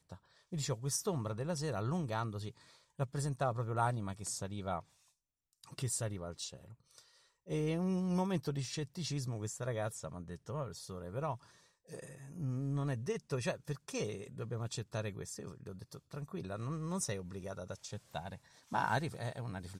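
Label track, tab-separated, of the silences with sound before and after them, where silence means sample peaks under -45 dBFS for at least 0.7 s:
4.800000	5.640000	silence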